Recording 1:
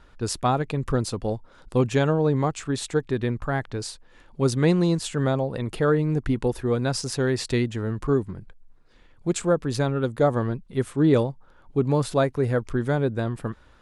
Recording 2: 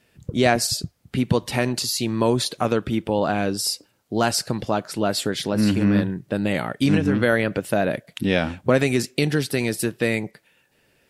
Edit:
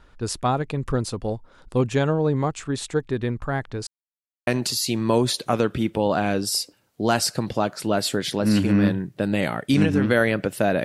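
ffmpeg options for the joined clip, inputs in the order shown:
-filter_complex "[0:a]apad=whole_dur=10.84,atrim=end=10.84,asplit=2[s0][s1];[s0]atrim=end=3.87,asetpts=PTS-STARTPTS,afade=t=out:st=3.866:d=0.004:c=hsin[s2];[s1]atrim=start=3.87:end=4.47,asetpts=PTS-STARTPTS,volume=0[s3];[1:a]atrim=start=1.59:end=7.96,asetpts=PTS-STARTPTS,afade=t=in:d=0.004:c=hsin[s4];[s2][s3][s4]concat=n=3:v=0:a=1"

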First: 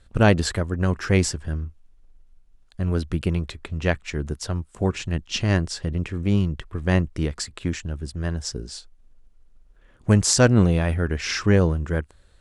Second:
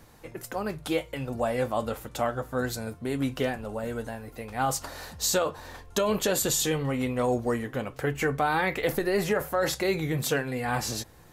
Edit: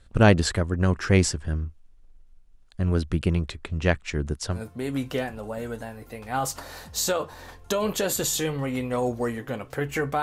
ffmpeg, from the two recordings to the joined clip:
-filter_complex "[0:a]apad=whole_dur=10.22,atrim=end=10.22,atrim=end=4.62,asetpts=PTS-STARTPTS[s0];[1:a]atrim=start=2.76:end=8.48,asetpts=PTS-STARTPTS[s1];[s0][s1]acrossfade=d=0.12:c1=tri:c2=tri"

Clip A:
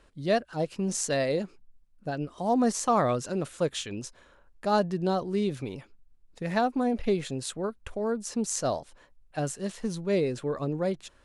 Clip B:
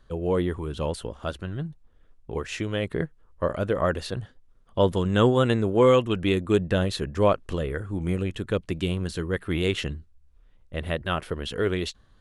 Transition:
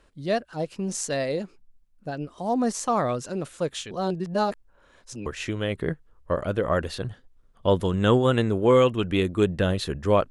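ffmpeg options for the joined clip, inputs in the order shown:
-filter_complex "[0:a]apad=whole_dur=10.3,atrim=end=10.3,asplit=2[s0][s1];[s0]atrim=end=3.912[s2];[s1]atrim=start=3.908:end=5.262,asetpts=PTS-STARTPTS,areverse[s3];[1:a]atrim=start=2.378:end=7.42[s4];[s2][s3]acrossfade=d=0.004:c1=hsin:c2=hsin[s5];[s5][s4]acrossfade=d=0.004:c1=hsin:c2=hsin"

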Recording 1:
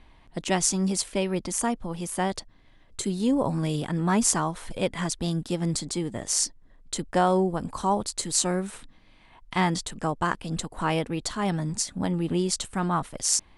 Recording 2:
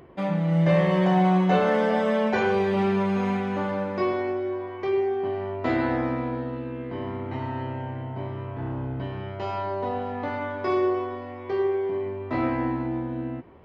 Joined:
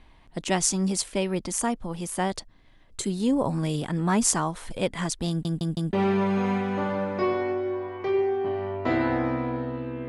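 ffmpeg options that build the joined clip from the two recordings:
-filter_complex "[0:a]apad=whole_dur=10.08,atrim=end=10.08,asplit=4[s0][s1][s2][s3];[s0]atrim=end=5.452[s4];[s1]atrim=start=5.288:end=5.452[s5];[s2]atrim=start=5.288:end=5.452[s6];[s3]atrim=start=5.288:end=5.452[s7];[1:a]atrim=start=2.718:end=6.87[s8];[s4][s5]acrossfade=d=0.004:c1=hsin:c2=hsin[s9];[s9][s6]acrossfade=d=0.004:c1=hsin:c2=hsin[s10];[s10][s7]acrossfade=d=0.004:c1=hsin:c2=hsin[s11];[s11][s8]acrossfade=d=0.004:c1=hsin:c2=hsin"

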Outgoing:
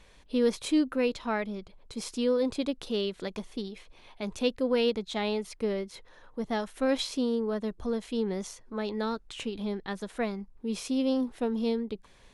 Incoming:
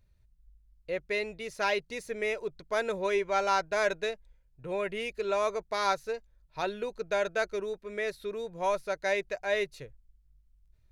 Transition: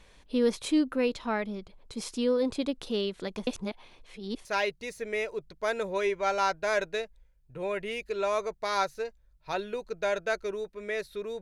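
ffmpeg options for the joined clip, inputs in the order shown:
-filter_complex "[0:a]apad=whole_dur=11.41,atrim=end=11.41,asplit=2[s0][s1];[s0]atrim=end=3.472[s2];[s1]atrim=start=3.468:end=4.452,asetpts=PTS-STARTPTS,areverse[s3];[1:a]atrim=start=1.538:end=8.5[s4];[s2][s3]acrossfade=d=0.004:c1=hsin:c2=hsin[s5];[s5][s4]acrossfade=d=0.004:c1=hsin:c2=hsin"

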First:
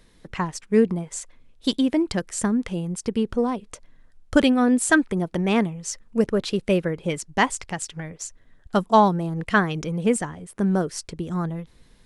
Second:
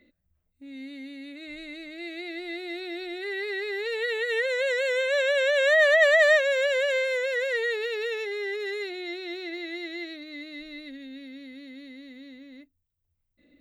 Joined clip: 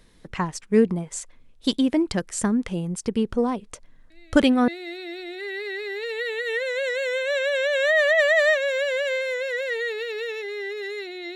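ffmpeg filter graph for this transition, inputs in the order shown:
-filter_complex "[1:a]asplit=2[s0][s1];[0:a]apad=whole_dur=11.35,atrim=end=11.35,atrim=end=4.682[s2];[s1]atrim=start=2.508:end=9.18[s3];[s0]atrim=start=1.93:end=2.51,asetpts=PTS-STARTPTS,volume=0.158,afade=t=in:d=0.004:c=hsin,afade=t=out:st=0.576:d=0.004:c=hsin,adelay=4100[s4];[s2][s3]acrossfade=d=0.004:c1=hsin:c2=hsin[s5];[s5][s4]amix=inputs=2:normalize=0"

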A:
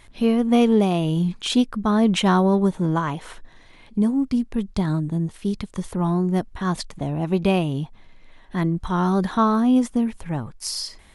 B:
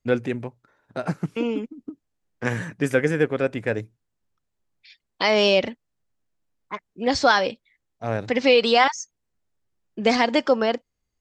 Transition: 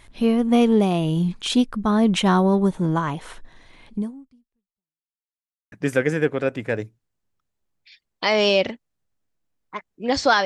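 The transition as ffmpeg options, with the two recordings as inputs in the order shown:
-filter_complex "[0:a]apad=whole_dur=10.45,atrim=end=10.45,asplit=2[s0][s1];[s0]atrim=end=5.13,asetpts=PTS-STARTPTS,afade=t=out:st=3.94:d=1.19:c=exp[s2];[s1]atrim=start=5.13:end=5.72,asetpts=PTS-STARTPTS,volume=0[s3];[1:a]atrim=start=2.7:end=7.43,asetpts=PTS-STARTPTS,afade=t=in:d=0.004:c=hsin[s4];[s2][s3][s4]concat=n=3:v=0:a=1"

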